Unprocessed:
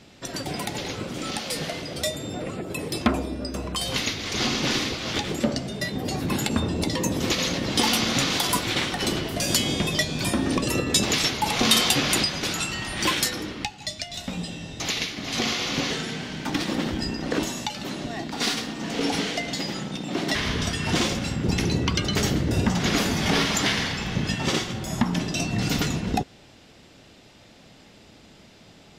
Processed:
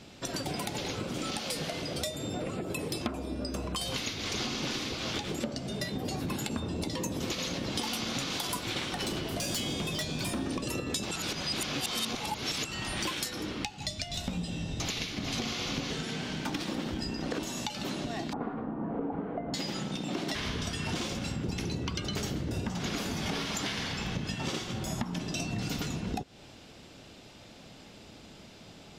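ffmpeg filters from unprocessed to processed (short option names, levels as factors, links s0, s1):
-filter_complex "[0:a]asettb=1/sr,asplit=3[s0][s1][s2];[s0]atrim=end=9.024[s3];[s1]atrim=start=9.02:end=10.41,asetpts=PTS-STARTPTS,afade=t=in:d=0.004:c=qsin,afade=t=out:st=1.386:d=0.004:c=qsin,volume=11.2,asoftclip=hard,volume=0.0891[s4];[s2]atrim=start=10.406[s5];[s3][s4]acrossfade=d=0.004:c1=hsin:c2=qsin[s6];[s6][s5]acrossfade=d=0.004:c1=qsin:c2=hsin,asettb=1/sr,asplit=3[s7][s8][s9];[s7]atrim=end=13.774[s10];[s8]atrim=start=13.77:end=16.03,asetpts=PTS-STARTPTS,afade=t=in:d=0.004:c=qsin,afade=t=out:st=2.256:d=0.004:c=qsin,lowshelf=f=170:g=9[s11];[s9]atrim=start=16.026[s12];[s10][s11]acrossfade=d=0.004:c1=hsin:c2=qsin[s13];[s13][s12]acrossfade=d=0.004:c1=qsin:c2=hsin,asettb=1/sr,asplit=3[s14][s15][s16];[s14]atrim=end=18.334[s17];[s15]atrim=start=18.33:end=19.54,asetpts=PTS-STARTPTS,afade=t=in:d=0.004:c=qsin,afade=t=out:st=1.206:d=0.004:c=qsin,lowpass=f=1200:w=0.5412,lowpass=f=1200:w=1.3066[s18];[s16]atrim=start=19.536[s19];[s17][s18]acrossfade=d=0.004:c1=hsin:c2=qsin[s20];[s20][s19]acrossfade=d=0.004:c1=qsin:c2=hsin,asplit=3[s21][s22][s23];[s21]atrim=end=11.112[s24];[s22]atrim=start=11.108:end=12.652,asetpts=PTS-STARTPTS,areverse[s25];[s23]atrim=start=12.648[s26];[s24][s25]acrossfade=d=0.004:c1=hsin:c2=hsin[s27];[s27][s26]acrossfade=d=0.004:c1=hsin:c2=hsin,equalizer=f=1900:w=5.3:g=-4,acompressor=threshold=0.0282:ratio=6"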